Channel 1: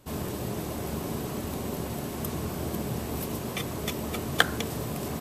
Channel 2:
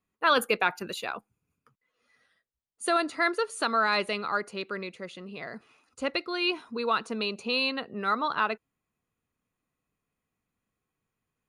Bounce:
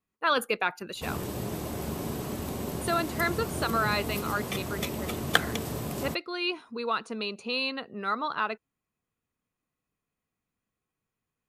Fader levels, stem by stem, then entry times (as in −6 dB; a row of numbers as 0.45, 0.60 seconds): −1.0, −2.5 decibels; 0.95, 0.00 seconds